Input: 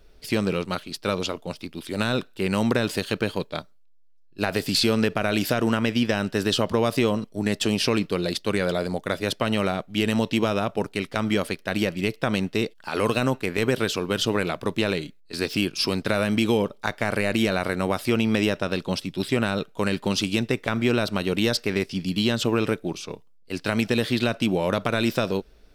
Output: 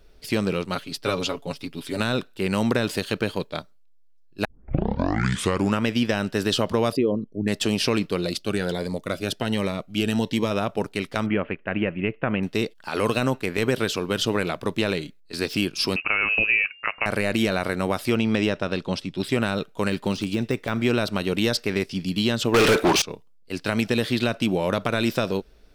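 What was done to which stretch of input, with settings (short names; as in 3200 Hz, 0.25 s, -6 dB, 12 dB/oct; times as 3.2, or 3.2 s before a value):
0.75–2 comb 7.2 ms
4.45 tape start 1.37 s
6.92–7.48 formant sharpening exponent 2
8.26–10.51 cascading phaser rising 1.3 Hz
11.26–12.43 Chebyshev low-pass 2800 Hz, order 5
15.96–17.06 inverted band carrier 2800 Hz
18.15–19.24 air absorption 53 m
19.9–20.75 de-esser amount 80%
22.54–23.02 overdrive pedal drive 36 dB, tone 5200 Hz, clips at -10 dBFS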